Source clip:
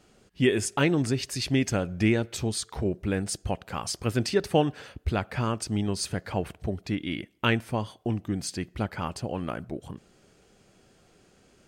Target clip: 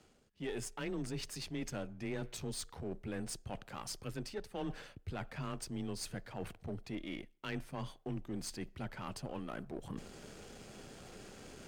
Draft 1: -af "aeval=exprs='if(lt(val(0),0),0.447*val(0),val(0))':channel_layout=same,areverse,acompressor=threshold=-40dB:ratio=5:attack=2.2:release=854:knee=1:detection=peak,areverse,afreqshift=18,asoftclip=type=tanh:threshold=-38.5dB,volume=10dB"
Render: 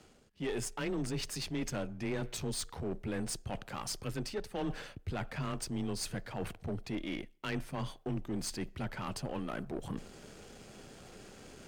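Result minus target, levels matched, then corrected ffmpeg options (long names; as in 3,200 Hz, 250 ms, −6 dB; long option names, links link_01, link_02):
downward compressor: peak gain reduction −5.5 dB
-af "aeval=exprs='if(lt(val(0),0),0.447*val(0),val(0))':channel_layout=same,areverse,acompressor=threshold=-47dB:ratio=5:attack=2.2:release=854:knee=1:detection=peak,areverse,afreqshift=18,asoftclip=type=tanh:threshold=-38.5dB,volume=10dB"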